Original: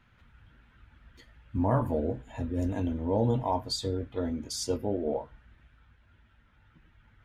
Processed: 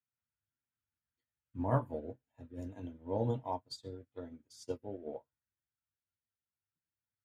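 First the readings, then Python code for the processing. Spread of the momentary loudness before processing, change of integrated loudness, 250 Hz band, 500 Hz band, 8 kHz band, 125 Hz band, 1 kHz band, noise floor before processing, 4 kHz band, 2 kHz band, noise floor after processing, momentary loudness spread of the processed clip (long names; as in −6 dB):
8 LU, −9.0 dB, −11.0 dB, −8.5 dB, −19.0 dB, −8.0 dB, −7.5 dB, −63 dBFS, −15.5 dB, −8.0 dB, below −85 dBFS, 17 LU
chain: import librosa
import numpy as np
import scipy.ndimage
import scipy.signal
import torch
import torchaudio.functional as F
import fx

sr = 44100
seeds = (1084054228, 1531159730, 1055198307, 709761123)

y = scipy.signal.sosfilt(scipy.signal.butter(4, 81.0, 'highpass', fs=sr, output='sos'), x)
y = fx.peak_eq(y, sr, hz=210.0, db=-3.5, octaves=0.33)
y = fx.upward_expand(y, sr, threshold_db=-46.0, expansion=2.5)
y = y * 10.0 ** (-2.5 / 20.0)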